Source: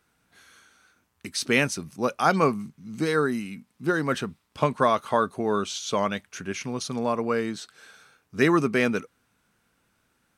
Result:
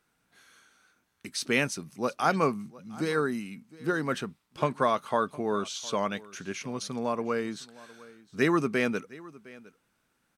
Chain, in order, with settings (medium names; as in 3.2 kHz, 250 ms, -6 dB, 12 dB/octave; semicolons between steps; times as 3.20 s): peaking EQ 80 Hz -9.5 dB 0.52 oct; delay 710 ms -21 dB; trim -4 dB